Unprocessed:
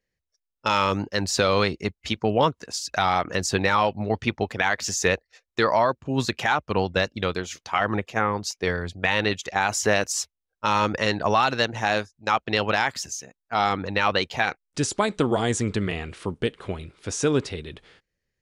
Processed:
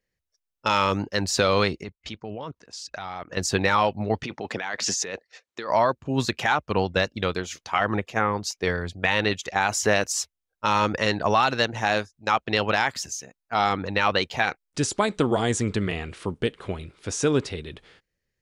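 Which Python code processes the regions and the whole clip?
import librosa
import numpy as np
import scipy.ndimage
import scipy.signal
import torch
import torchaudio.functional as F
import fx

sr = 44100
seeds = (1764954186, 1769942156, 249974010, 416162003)

y = fx.chain(x, sr, fx.level_steps(step_db=17),
    fx.air_absorb(metres=67.0), at=(1.83, 3.37))
y = fx.chain(y, sr, fx.over_compress(threshold_db=-29.0, ratio=-1.0),
    fx.bandpass_edges(low_hz=180.0, high_hz=7600.0), at=(4.23, 5.7))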